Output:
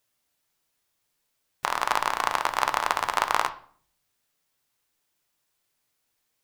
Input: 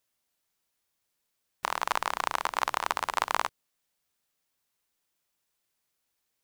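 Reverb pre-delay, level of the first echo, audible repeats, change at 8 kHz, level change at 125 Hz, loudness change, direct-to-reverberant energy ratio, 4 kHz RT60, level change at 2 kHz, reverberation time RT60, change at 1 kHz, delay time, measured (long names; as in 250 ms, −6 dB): 7 ms, no echo audible, no echo audible, +3.5 dB, can't be measured, +4.5 dB, 7.5 dB, 0.40 s, +4.5 dB, 0.50 s, +4.5 dB, no echo audible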